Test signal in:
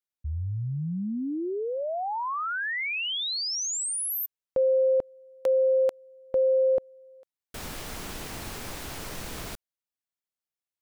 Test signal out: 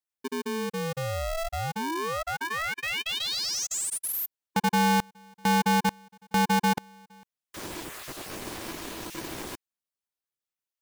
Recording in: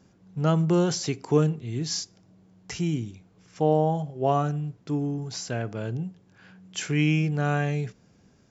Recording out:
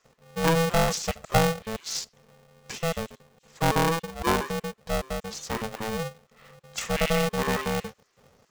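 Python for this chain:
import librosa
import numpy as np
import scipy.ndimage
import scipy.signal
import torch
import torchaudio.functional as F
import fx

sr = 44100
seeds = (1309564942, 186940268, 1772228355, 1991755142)

y = fx.spec_dropout(x, sr, seeds[0], share_pct=21)
y = y * np.sign(np.sin(2.0 * np.pi * 330.0 * np.arange(len(y)) / sr))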